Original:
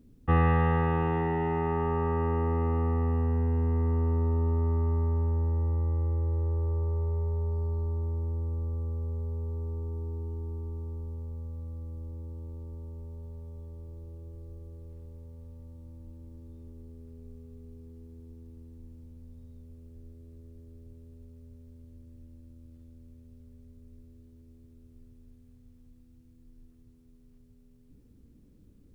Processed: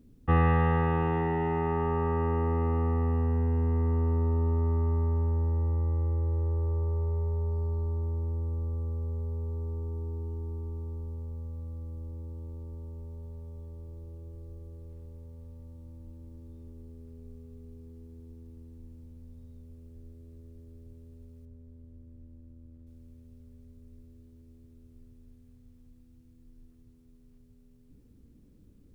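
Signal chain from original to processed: 21.45–22.87 high shelf 2100 Hz -12 dB

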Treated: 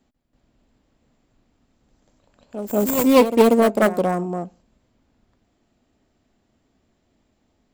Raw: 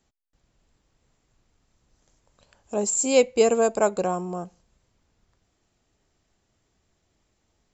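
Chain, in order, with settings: self-modulated delay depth 0.44 ms; fifteen-band EQ 250 Hz +11 dB, 630 Hz +4 dB, 6300 Hz -7 dB; reverse echo 0.188 s -10 dB; gain +1.5 dB

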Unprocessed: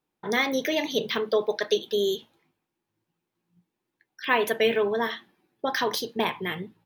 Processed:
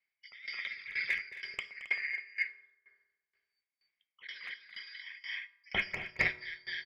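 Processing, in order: four-band scrambler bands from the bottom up 4321; 4.27–5.15 expander -25 dBFS; 5.72–6.38 tilt -3 dB/oct; negative-ratio compressor -30 dBFS, ratio -1; synth low-pass 2200 Hz, resonance Q 12; hard clip -9 dBFS, distortion -26 dB; loudspeakers at several distances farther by 76 m -6 dB, 92 m -3 dB; on a send at -11 dB: reverb RT60 2.3 s, pre-delay 3 ms; on the sum: dB-ramp tremolo decaying 2.1 Hz, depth 20 dB; gain -7 dB

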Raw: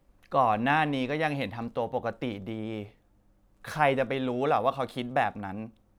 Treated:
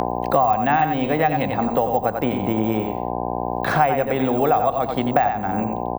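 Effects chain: careless resampling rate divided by 2×, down none, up zero stuff; gate -51 dBFS, range -19 dB; LPF 2300 Hz 6 dB/oct; feedback echo 91 ms, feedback 16%, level -7 dB; buzz 60 Hz, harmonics 17, -44 dBFS -1 dB/oct; bell 750 Hz +8 dB 0.21 oct; three-band squash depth 100%; gain +5 dB

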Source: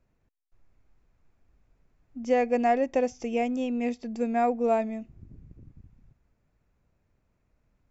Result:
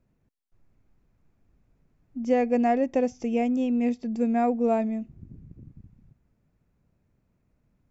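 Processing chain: bell 180 Hz +8.5 dB 2.2 oct; gain -2.5 dB

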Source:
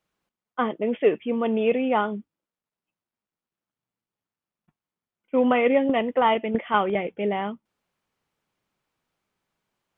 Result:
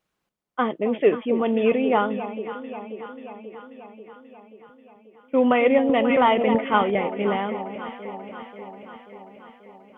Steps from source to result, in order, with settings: vibrato 3.4 Hz 22 cents; echo with dull and thin repeats by turns 0.268 s, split 900 Hz, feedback 79%, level -10 dB; 5.92–6.71 backwards sustainer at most 24 dB/s; gain +1.5 dB

